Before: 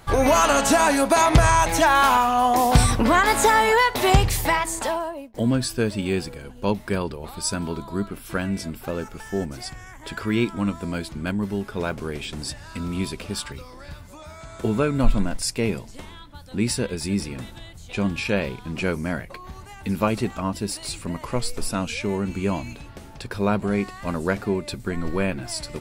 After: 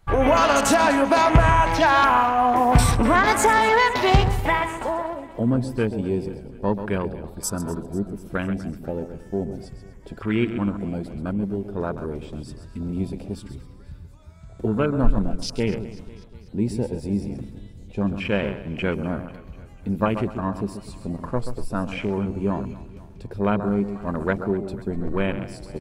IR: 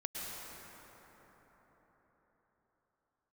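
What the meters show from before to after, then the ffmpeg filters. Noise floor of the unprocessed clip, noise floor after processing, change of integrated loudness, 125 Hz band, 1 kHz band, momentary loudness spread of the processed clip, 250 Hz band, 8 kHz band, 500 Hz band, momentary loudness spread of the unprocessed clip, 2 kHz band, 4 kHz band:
-43 dBFS, -44 dBFS, 0.0 dB, +0.5 dB, +0.5 dB, 18 LU, +0.5 dB, -5.5 dB, +0.5 dB, 18 LU, 0.0 dB, -3.0 dB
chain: -filter_complex "[0:a]asplit=2[a][b];[b]aecho=0:1:133:0.335[c];[a][c]amix=inputs=2:normalize=0,afwtdn=0.0316,asplit=2[d][e];[e]aecho=0:1:246|492|738|984|1230:0.119|0.0677|0.0386|0.022|0.0125[f];[d][f]amix=inputs=2:normalize=0"

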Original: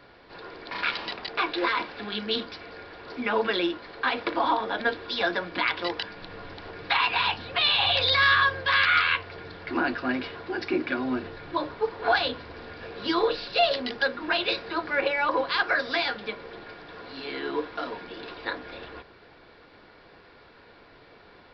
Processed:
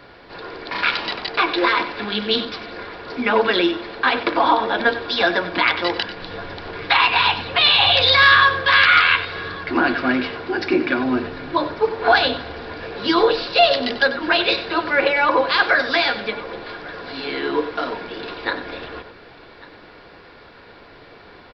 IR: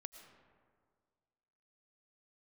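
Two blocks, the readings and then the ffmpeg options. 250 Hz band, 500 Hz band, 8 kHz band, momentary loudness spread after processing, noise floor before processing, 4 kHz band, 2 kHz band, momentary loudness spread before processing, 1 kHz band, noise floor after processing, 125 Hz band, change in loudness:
+8.5 dB, +8.5 dB, n/a, 19 LU, -53 dBFS, +8.5 dB, +8.0 dB, 20 LU, +8.5 dB, -45 dBFS, +7.5 dB, +8.0 dB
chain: -filter_complex "[0:a]aecho=1:1:1146:0.0891,asplit=2[a][b];[1:a]atrim=start_sample=2205,adelay=94[c];[b][c]afir=irnorm=-1:irlink=0,volume=-7dB[d];[a][d]amix=inputs=2:normalize=0,volume=8dB"

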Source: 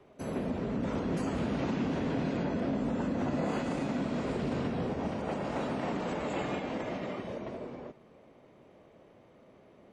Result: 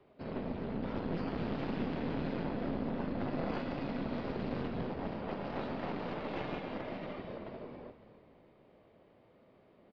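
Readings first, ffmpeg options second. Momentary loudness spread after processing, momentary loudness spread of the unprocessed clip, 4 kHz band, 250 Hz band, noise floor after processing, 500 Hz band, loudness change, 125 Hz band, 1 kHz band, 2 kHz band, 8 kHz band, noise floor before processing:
7 LU, 7 LU, -4.5 dB, -5.0 dB, -64 dBFS, -4.5 dB, -5.0 dB, -4.5 dB, -4.0 dB, -4.5 dB, under -20 dB, -59 dBFS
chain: -filter_complex "[0:a]aresample=11025,aresample=44100,aeval=exprs='0.075*(cos(1*acos(clip(val(0)/0.075,-1,1)))-cos(1*PI/2))+0.0299*(cos(2*acos(clip(val(0)/0.075,-1,1)))-cos(2*PI/2))':c=same,asplit=6[a][b][c][d][e][f];[b]adelay=281,afreqshift=-37,volume=-14dB[g];[c]adelay=562,afreqshift=-74,volume=-20dB[h];[d]adelay=843,afreqshift=-111,volume=-26dB[i];[e]adelay=1124,afreqshift=-148,volume=-32.1dB[j];[f]adelay=1405,afreqshift=-185,volume=-38.1dB[k];[a][g][h][i][j][k]amix=inputs=6:normalize=0,volume=-5.5dB"

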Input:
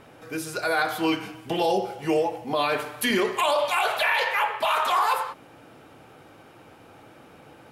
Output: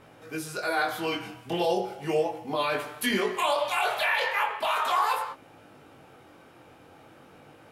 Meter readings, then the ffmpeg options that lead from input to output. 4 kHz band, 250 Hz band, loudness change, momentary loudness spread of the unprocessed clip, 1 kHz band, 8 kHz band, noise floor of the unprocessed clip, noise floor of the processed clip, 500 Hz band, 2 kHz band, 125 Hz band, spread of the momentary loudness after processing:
-3.0 dB, -4.5 dB, -3.0 dB, 8 LU, -3.0 dB, -3.0 dB, -51 dBFS, -54 dBFS, -3.0 dB, -2.5 dB, -2.0 dB, 10 LU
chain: -af "flanger=delay=18.5:depth=5.2:speed=0.38"

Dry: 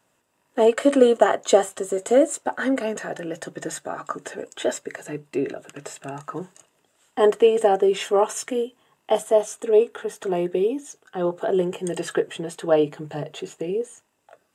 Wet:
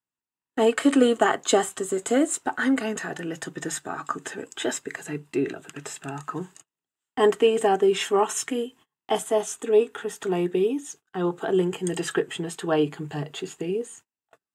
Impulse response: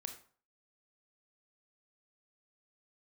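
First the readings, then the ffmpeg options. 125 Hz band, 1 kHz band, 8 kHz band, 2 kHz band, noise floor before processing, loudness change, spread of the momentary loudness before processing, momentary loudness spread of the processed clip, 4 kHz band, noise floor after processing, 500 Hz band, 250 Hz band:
+1.5 dB, -1.5 dB, +2.0 dB, +1.5 dB, -69 dBFS, -2.5 dB, 17 LU, 14 LU, +2.0 dB, under -85 dBFS, -4.0 dB, +1.0 dB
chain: -af "agate=range=-28dB:threshold=-47dB:ratio=16:detection=peak,equalizer=f=570:t=o:w=0.5:g=-14,volume=2dB"

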